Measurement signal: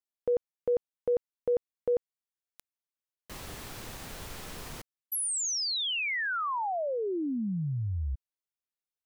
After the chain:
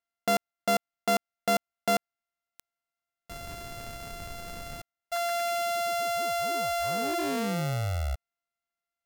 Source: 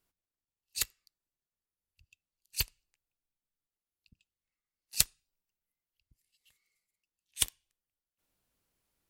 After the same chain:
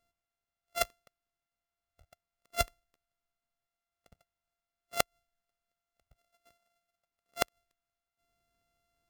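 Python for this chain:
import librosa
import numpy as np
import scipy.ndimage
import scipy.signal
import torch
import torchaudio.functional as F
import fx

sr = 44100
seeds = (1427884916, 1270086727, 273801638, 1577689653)

y = np.r_[np.sort(x[:len(x) // 64 * 64].reshape(-1, 64), axis=1).ravel(), x[len(x) // 64 * 64:]]
y = fx.gate_flip(y, sr, shuts_db=-12.0, range_db=-26)
y = y * 10.0 ** (2.0 / 20.0)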